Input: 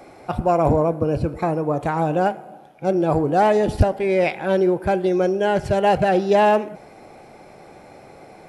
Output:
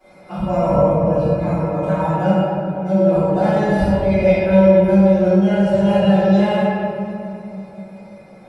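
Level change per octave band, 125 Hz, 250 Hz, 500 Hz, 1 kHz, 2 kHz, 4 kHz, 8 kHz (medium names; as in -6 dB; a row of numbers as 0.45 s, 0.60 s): +6.5 dB, +8.0 dB, +3.5 dB, -2.0 dB, 0.0 dB, +1.5 dB, no reading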